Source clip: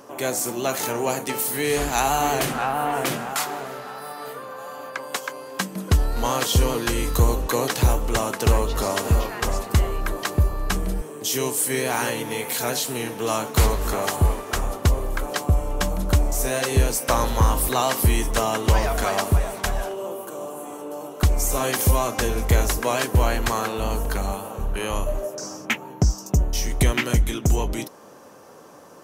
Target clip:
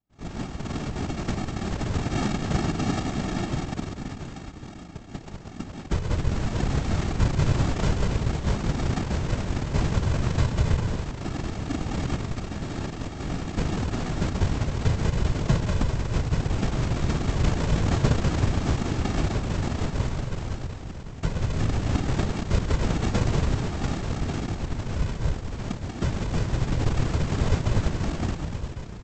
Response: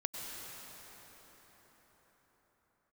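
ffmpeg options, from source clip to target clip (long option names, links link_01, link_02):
-filter_complex "[0:a]agate=range=-33dB:threshold=-26dB:ratio=3:detection=peak,asplit=2[link_01][link_02];[link_02]adelay=192,lowpass=frequency=3200:poles=1,volume=-4dB,asplit=2[link_03][link_04];[link_04]adelay=192,lowpass=frequency=3200:poles=1,volume=0.41,asplit=2[link_05][link_06];[link_06]adelay=192,lowpass=frequency=3200:poles=1,volume=0.41,asplit=2[link_07][link_08];[link_08]adelay=192,lowpass=frequency=3200:poles=1,volume=0.41,asplit=2[link_09][link_10];[link_10]adelay=192,lowpass=frequency=3200:poles=1,volume=0.41[link_11];[link_01][link_03][link_05][link_07][link_09][link_11]amix=inputs=6:normalize=0[link_12];[1:a]atrim=start_sample=2205,asetrate=48510,aresample=44100[link_13];[link_12][link_13]afir=irnorm=-1:irlink=0,aphaser=in_gain=1:out_gain=1:delay=4.6:decay=0.37:speed=0.39:type=triangular,bandreject=frequency=46.25:width_type=h:width=4,bandreject=frequency=92.5:width_type=h:width=4,bandreject=frequency=138.75:width_type=h:width=4,bandreject=frequency=185:width_type=h:width=4,bandreject=frequency=231.25:width_type=h:width=4,bandreject=frequency=277.5:width_type=h:width=4,bandreject=frequency=323.75:width_type=h:width=4,aresample=16000,acrusher=samples=32:mix=1:aa=0.000001,aresample=44100,afftfilt=real='hypot(re,im)*cos(2*PI*random(0))':imag='hypot(re,im)*sin(2*PI*random(1))':win_size=512:overlap=0.75"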